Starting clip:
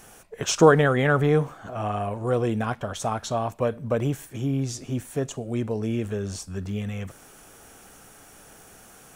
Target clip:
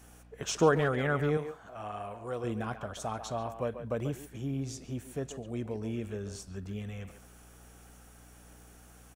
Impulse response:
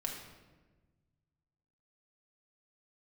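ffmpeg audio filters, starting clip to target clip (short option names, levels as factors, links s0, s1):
-filter_complex "[0:a]aeval=exprs='val(0)+0.00501*(sin(2*PI*60*n/s)+sin(2*PI*2*60*n/s)/2+sin(2*PI*3*60*n/s)/3+sin(2*PI*4*60*n/s)/4+sin(2*PI*5*60*n/s)/5)':c=same,asettb=1/sr,asplit=3[s0][s1][s2];[s0]atrim=end=1.374[s3];[s1]atrim=start=1.37:end=2.44,asetpts=PTS-STARTPTS,afade=t=in:d=0.004:c=qsin,afade=t=out:st=1.066:d=0.004:c=qsin,lowshelf=f=400:g=-9[s4];[s2]atrim=start=2.436[s5];[s3][s4]acrossfade=d=0.004:c1=hsin:c2=qsin[s6];[s6][s5]acrossfade=d=0.004:c1=qsin:c2=hsin,asplit=2[s7][s8];[s8]adelay=140,highpass=300,lowpass=3400,asoftclip=type=hard:threshold=0.237,volume=0.355[s9];[s7][s9]amix=inputs=2:normalize=0,volume=0.355"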